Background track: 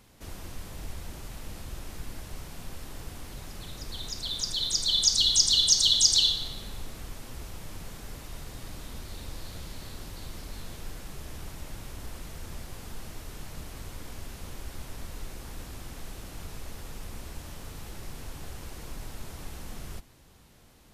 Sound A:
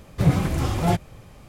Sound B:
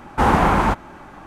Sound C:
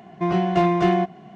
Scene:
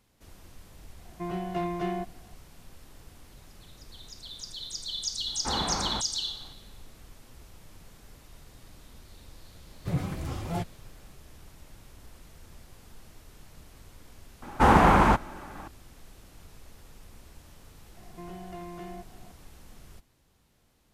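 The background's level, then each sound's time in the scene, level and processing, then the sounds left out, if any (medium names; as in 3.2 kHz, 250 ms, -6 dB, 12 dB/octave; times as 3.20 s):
background track -10 dB
0.99 s: add C -12.5 dB
5.27 s: add B -16 dB
9.67 s: add A -11 dB
14.42 s: add B -2.5 dB
17.97 s: add C -9.5 dB + compression 2:1, threshold -40 dBFS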